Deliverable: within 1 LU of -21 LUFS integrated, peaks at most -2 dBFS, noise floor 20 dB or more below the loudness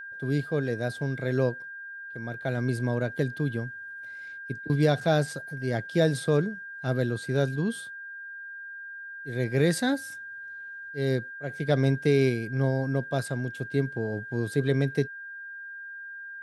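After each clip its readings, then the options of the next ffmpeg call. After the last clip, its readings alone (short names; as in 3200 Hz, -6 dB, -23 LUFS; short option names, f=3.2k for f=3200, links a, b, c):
steady tone 1600 Hz; tone level -38 dBFS; loudness -28.0 LUFS; peak -10.0 dBFS; loudness target -21.0 LUFS
-> -af "bandreject=f=1.6k:w=30"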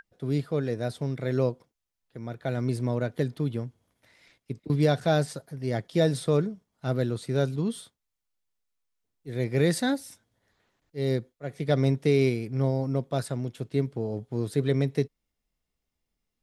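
steady tone none; loudness -28.0 LUFS; peak -10.0 dBFS; loudness target -21.0 LUFS
-> -af "volume=7dB"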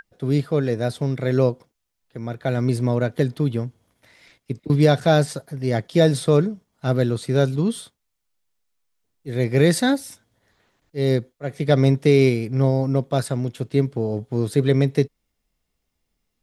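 loudness -21.0 LUFS; peak -3.0 dBFS; noise floor -77 dBFS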